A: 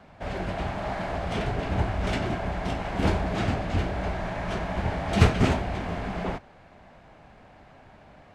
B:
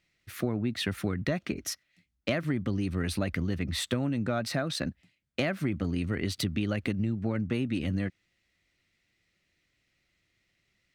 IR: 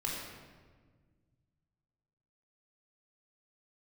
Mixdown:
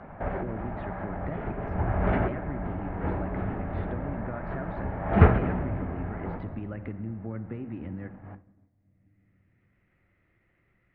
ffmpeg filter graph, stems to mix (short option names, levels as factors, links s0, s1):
-filter_complex "[0:a]bandreject=f=60:t=h:w=6,bandreject=f=120:t=h:w=6,volume=1.26,asplit=2[s0][s1];[s1]volume=0.168[s2];[1:a]volume=0.355,asplit=3[s3][s4][s5];[s4]volume=0.237[s6];[s5]apad=whole_len=368178[s7];[s0][s7]sidechaincompress=threshold=0.00251:ratio=4:attack=12:release=259[s8];[2:a]atrim=start_sample=2205[s9];[s2][s6]amix=inputs=2:normalize=0[s10];[s10][s9]afir=irnorm=-1:irlink=0[s11];[s8][s3][s11]amix=inputs=3:normalize=0,lowpass=f=1800:w=0.5412,lowpass=f=1800:w=1.3066,agate=range=0.0224:threshold=0.00891:ratio=3:detection=peak,acompressor=mode=upward:threshold=0.0251:ratio=2.5"